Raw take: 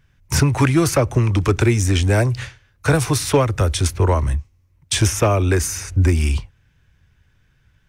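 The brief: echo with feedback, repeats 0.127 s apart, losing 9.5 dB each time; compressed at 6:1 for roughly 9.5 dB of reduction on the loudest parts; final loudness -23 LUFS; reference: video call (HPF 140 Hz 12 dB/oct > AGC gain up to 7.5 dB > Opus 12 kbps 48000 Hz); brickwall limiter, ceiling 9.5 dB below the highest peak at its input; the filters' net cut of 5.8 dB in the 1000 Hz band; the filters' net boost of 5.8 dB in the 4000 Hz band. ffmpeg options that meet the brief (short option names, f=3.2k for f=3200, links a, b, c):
-af "equalizer=f=1k:t=o:g=-8,equalizer=f=4k:t=o:g=8,acompressor=threshold=-22dB:ratio=6,alimiter=limit=-17.5dB:level=0:latency=1,highpass=140,aecho=1:1:127|254|381|508:0.335|0.111|0.0365|0.012,dynaudnorm=m=7.5dB,volume=7.5dB" -ar 48000 -c:a libopus -b:a 12k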